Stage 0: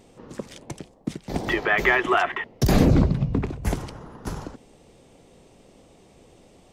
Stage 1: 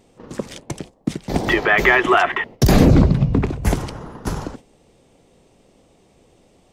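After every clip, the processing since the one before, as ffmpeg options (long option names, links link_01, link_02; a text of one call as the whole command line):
ffmpeg -i in.wav -filter_complex "[0:a]agate=range=-9dB:threshold=-43dB:ratio=16:detection=peak,asplit=2[link_01][link_02];[link_02]alimiter=limit=-14dB:level=0:latency=1,volume=-3dB[link_03];[link_01][link_03]amix=inputs=2:normalize=0,volume=2.5dB" out.wav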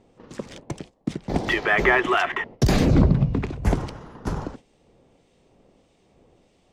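ffmpeg -i in.wav -filter_complex "[0:a]adynamicsmooth=sensitivity=3:basefreq=7700,acrossover=split=1700[link_01][link_02];[link_01]aeval=exprs='val(0)*(1-0.5/2+0.5/2*cos(2*PI*1.6*n/s))':channel_layout=same[link_03];[link_02]aeval=exprs='val(0)*(1-0.5/2-0.5/2*cos(2*PI*1.6*n/s))':channel_layout=same[link_04];[link_03][link_04]amix=inputs=2:normalize=0,volume=-2dB" out.wav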